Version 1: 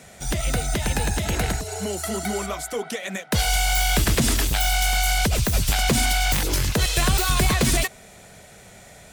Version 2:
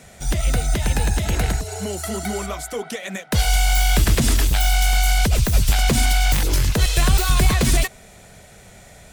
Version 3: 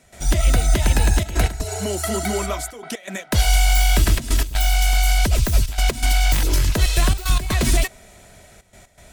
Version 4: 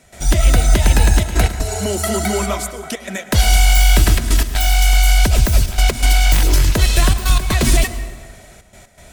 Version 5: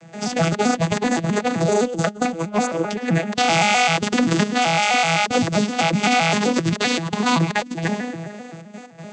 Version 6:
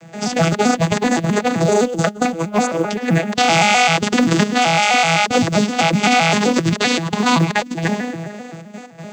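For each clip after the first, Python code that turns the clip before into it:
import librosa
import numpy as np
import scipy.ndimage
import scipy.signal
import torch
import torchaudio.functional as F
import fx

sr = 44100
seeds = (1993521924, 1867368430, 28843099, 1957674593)

y1 = fx.low_shelf(x, sr, hz=81.0, db=8.5)
y2 = fx.step_gate(y1, sr, bpm=122, pattern='.xxxxxxxxx.x', floor_db=-12.0, edge_ms=4.5)
y2 = y2 + 0.31 * np.pad(y2, (int(3.1 * sr / 1000.0), 0))[:len(y2)]
y2 = fx.rider(y2, sr, range_db=3, speed_s=2.0)
y3 = fx.rev_plate(y2, sr, seeds[0], rt60_s=1.5, hf_ratio=0.6, predelay_ms=90, drr_db=12.0)
y3 = F.gain(torch.from_numpy(y3), 4.0).numpy()
y4 = fx.vocoder_arp(y3, sr, chord='major triad', root=52, every_ms=129)
y4 = fx.over_compress(y4, sr, threshold_db=-25.0, ratio=-0.5)
y4 = F.gain(torch.from_numpy(y4), 6.0).numpy()
y5 = fx.quant_companded(y4, sr, bits=8)
y5 = F.gain(torch.from_numpy(y5), 3.5).numpy()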